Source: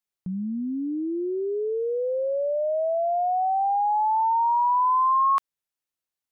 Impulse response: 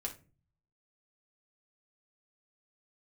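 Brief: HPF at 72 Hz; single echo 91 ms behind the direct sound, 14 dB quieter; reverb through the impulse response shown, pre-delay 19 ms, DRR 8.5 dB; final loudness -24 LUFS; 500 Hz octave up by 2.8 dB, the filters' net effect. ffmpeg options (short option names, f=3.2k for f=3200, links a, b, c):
-filter_complex "[0:a]highpass=72,equalizer=f=500:t=o:g=3.5,aecho=1:1:91:0.2,asplit=2[a][b];[1:a]atrim=start_sample=2205,adelay=19[c];[b][c]afir=irnorm=-1:irlink=0,volume=-8.5dB[d];[a][d]amix=inputs=2:normalize=0,volume=-2dB"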